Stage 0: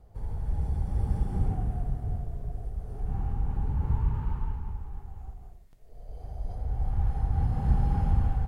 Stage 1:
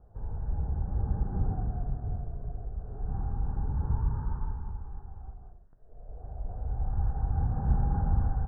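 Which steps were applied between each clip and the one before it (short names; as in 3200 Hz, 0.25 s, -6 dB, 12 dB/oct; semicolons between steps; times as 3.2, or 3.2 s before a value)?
elliptic low-pass 1600 Hz, stop band 40 dB; gain -1 dB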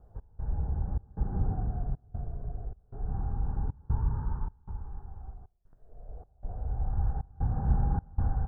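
step gate "x.xxx.xxx" 77 bpm -24 dB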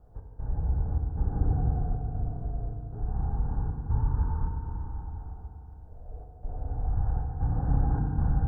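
FDN reverb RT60 3.2 s, low-frequency decay 1.25×, high-frequency decay 0.75×, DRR 0 dB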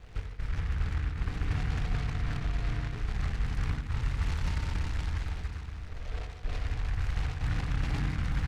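reverse; compressor, threshold -33 dBFS, peak gain reduction 13.5 dB; reverse; doubler 23 ms -12 dB; noise-modulated delay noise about 1500 Hz, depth 0.26 ms; gain +6 dB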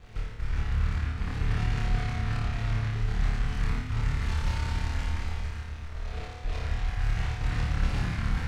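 flutter echo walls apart 4.7 m, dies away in 0.66 s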